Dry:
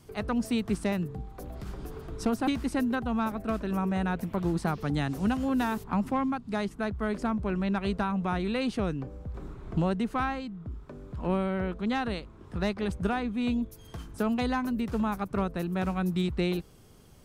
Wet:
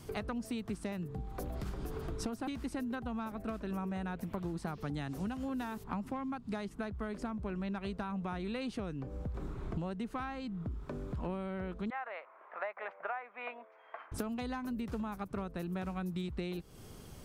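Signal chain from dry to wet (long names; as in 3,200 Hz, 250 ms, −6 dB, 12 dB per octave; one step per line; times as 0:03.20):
0:11.90–0:14.12: Chebyshev band-pass filter 600–2,200 Hz, order 3
downward compressor 8 to 1, threshold −40 dBFS, peak gain reduction 17.5 dB
level +4.5 dB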